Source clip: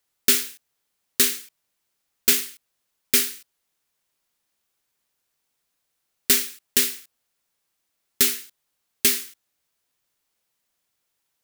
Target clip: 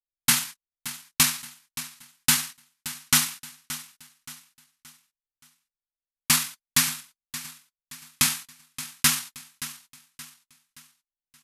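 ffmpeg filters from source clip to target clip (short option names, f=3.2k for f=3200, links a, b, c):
-af "anlmdn=0.158,asetrate=26990,aresample=44100,atempo=1.63392,aecho=1:1:574|1148|1722|2296:0.188|0.0753|0.0301|0.0121,volume=-2dB"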